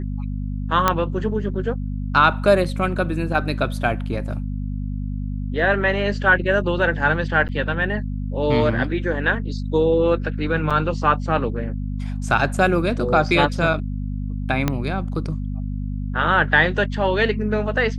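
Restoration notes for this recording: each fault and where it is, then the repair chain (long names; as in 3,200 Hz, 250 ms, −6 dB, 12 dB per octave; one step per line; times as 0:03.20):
mains hum 50 Hz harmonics 5 −26 dBFS
0:00.88: click −2 dBFS
0:07.48–0:07.49: drop-out 8.8 ms
0:10.70–0:10.71: drop-out 5.9 ms
0:14.68: click −6 dBFS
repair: click removal
hum removal 50 Hz, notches 5
repair the gap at 0:07.48, 8.8 ms
repair the gap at 0:10.70, 5.9 ms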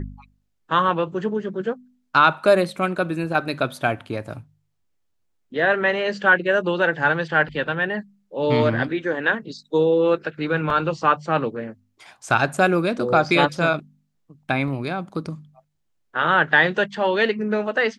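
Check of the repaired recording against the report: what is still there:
0:14.68: click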